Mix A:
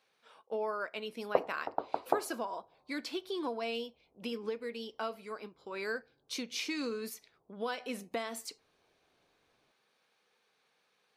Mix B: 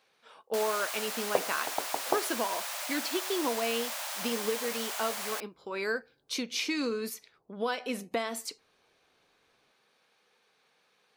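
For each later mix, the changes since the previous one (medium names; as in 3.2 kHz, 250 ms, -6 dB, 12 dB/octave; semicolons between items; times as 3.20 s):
speech +5.0 dB; first sound: unmuted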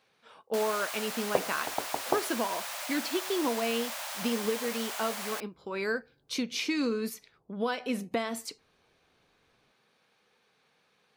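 master: add tone controls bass +8 dB, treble -2 dB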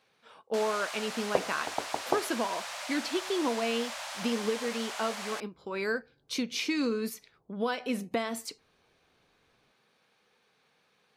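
first sound: add low-pass 7.7 kHz 12 dB/octave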